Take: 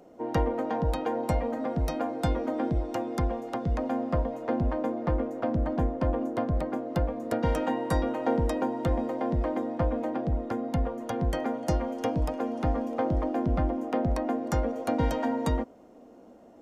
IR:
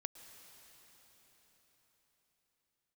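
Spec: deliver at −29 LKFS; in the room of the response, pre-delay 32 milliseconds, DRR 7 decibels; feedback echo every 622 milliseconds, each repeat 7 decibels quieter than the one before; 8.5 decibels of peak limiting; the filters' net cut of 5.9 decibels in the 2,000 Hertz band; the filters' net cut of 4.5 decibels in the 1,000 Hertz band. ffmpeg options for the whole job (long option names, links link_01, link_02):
-filter_complex "[0:a]equalizer=frequency=1000:width_type=o:gain=-5.5,equalizer=frequency=2000:width_type=o:gain=-5.5,alimiter=limit=-24dB:level=0:latency=1,aecho=1:1:622|1244|1866|2488|3110:0.447|0.201|0.0905|0.0407|0.0183,asplit=2[link_01][link_02];[1:a]atrim=start_sample=2205,adelay=32[link_03];[link_02][link_03]afir=irnorm=-1:irlink=0,volume=-4dB[link_04];[link_01][link_04]amix=inputs=2:normalize=0,volume=3dB"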